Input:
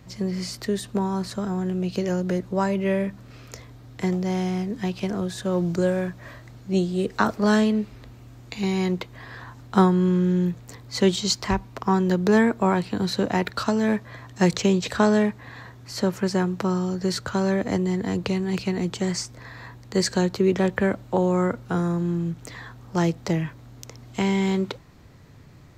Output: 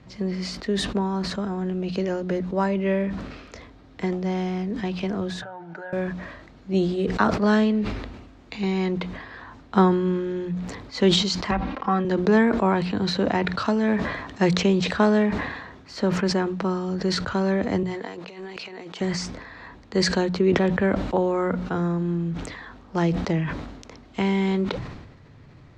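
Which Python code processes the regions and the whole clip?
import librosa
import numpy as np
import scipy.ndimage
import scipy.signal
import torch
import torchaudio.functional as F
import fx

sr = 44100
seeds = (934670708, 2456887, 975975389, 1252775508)

y = fx.chain(x, sr, fx.double_bandpass(hz=1100.0, octaves=0.8),
    fx.comb(ms=6.6, depth=0.63),
    fx.pre_swell(db_per_s=25.0), at=(5.42, 5.93))
y = fx.chain(y, sr, fx.lowpass(hz=3300.0, slope=12),
    fx.low_shelf(hz=180.0, db=-9.5),
    fx.comb(ms=3.7, depth=0.93), at=(11.51, 12.05))
y = fx.chain(y, sr, fx.median_filter(points=3),
    fx.highpass(hz=480.0, slope=12),
    fx.over_compress(threshold_db=-37.0, ratio=-0.5), at=(17.83, 19.01))
y = scipy.signal.sosfilt(scipy.signal.butter(2, 4100.0, 'lowpass', fs=sr, output='sos'), y)
y = fx.hum_notches(y, sr, base_hz=60, count=3)
y = fx.sustainer(y, sr, db_per_s=50.0)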